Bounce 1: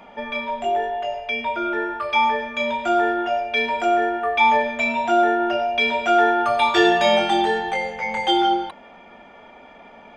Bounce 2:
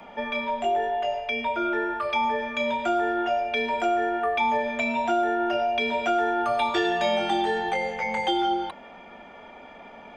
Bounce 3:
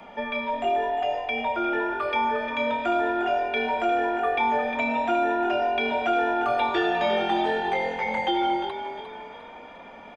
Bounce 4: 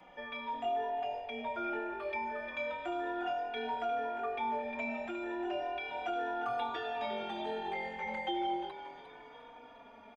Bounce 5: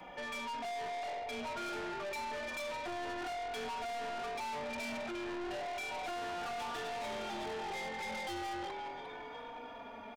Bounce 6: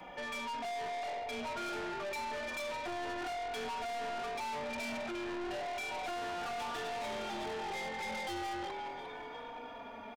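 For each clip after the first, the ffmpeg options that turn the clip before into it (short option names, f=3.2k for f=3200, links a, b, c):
-filter_complex "[0:a]acrossover=split=120|660|7500[a][b][c][d];[a]acompressor=threshold=-51dB:ratio=4[e];[b]acompressor=threshold=-26dB:ratio=4[f];[c]acompressor=threshold=-27dB:ratio=4[g];[d]acompressor=threshold=-59dB:ratio=4[h];[e][f][g][h]amix=inputs=4:normalize=0"
-filter_complex "[0:a]acrossover=split=4100[a][b];[b]acompressor=threshold=-58dB:ratio=4:attack=1:release=60[c];[a][c]amix=inputs=2:normalize=0,asplit=6[d][e][f][g][h][i];[e]adelay=353,afreqshift=42,volume=-10dB[j];[f]adelay=706,afreqshift=84,volume=-17.1dB[k];[g]adelay=1059,afreqshift=126,volume=-24.3dB[l];[h]adelay=1412,afreqshift=168,volume=-31.4dB[m];[i]adelay=1765,afreqshift=210,volume=-38.5dB[n];[d][j][k][l][m][n]amix=inputs=6:normalize=0"
-filter_complex "[0:a]alimiter=limit=-16.5dB:level=0:latency=1:release=419,asplit=2[a][b];[b]adelay=3.5,afreqshift=-0.34[c];[a][c]amix=inputs=2:normalize=1,volume=-8dB"
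-af "aeval=exprs='(tanh(200*val(0)+0.1)-tanh(0.1))/200':c=same,volume=7.5dB"
-af "aecho=1:1:719:0.0631,volume=1dB"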